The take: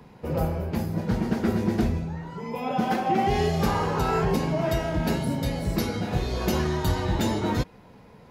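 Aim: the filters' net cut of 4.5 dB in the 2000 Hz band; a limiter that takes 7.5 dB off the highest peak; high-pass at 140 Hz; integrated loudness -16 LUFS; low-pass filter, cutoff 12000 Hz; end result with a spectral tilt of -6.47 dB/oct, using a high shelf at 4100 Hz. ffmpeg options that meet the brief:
-af "highpass=140,lowpass=12k,equalizer=f=2k:t=o:g=-4,highshelf=f=4.1k:g=-8.5,volume=14.5dB,alimiter=limit=-6dB:level=0:latency=1"

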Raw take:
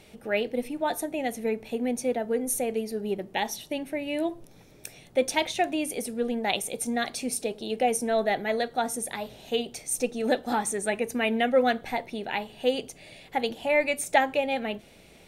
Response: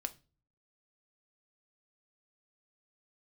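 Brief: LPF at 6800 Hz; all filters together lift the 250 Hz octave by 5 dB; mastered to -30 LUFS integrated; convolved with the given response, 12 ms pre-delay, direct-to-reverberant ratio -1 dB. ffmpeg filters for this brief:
-filter_complex "[0:a]lowpass=6.8k,equalizer=f=250:t=o:g=5.5,asplit=2[a][b];[1:a]atrim=start_sample=2205,adelay=12[c];[b][c]afir=irnorm=-1:irlink=0,volume=2dB[d];[a][d]amix=inputs=2:normalize=0,volume=-7dB"

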